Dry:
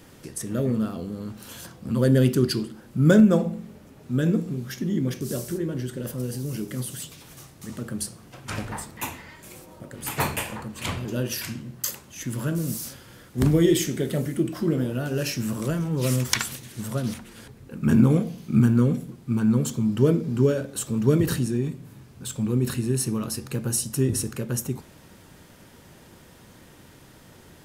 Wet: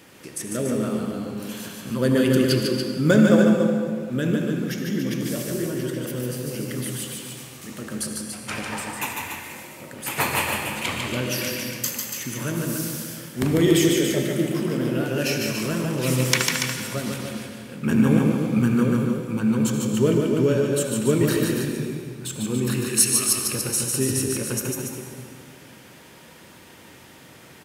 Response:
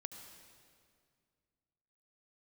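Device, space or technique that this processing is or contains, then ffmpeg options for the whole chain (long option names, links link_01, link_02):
stadium PA: -filter_complex "[0:a]asettb=1/sr,asplit=3[link_01][link_02][link_03];[link_01]atrim=end=22.864[link_04];[link_02]atrim=start=22.86:end=23.33,asetpts=PTS-STARTPTS,afade=type=in:duration=0.004:curve=qsin,afade=type=out:start_time=0.466:duration=0.004:curve=qsin,tiltshelf=frequency=1100:gain=-10[link_05];[link_03]atrim=start=23.326[link_06];[link_04][link_05]acrossfade=duration=0.004:curve1=hsin:curve2=qsin[link_07];[link_07][link_06]acrossfade=duration=0.004:curve1=qsin:curve2=hsin,highpass=frequency=230:poles=1,equalizer=frequency=2400:width_type=o:width=0.72:gain=5,aecho=1:1:148.7|285.7:0.631|0.447[link_08];[1:a]atrim=start_sample=2205[link_09];[link_08][link_09]afir=irnorm=-1:irlink=0,volume=6dB"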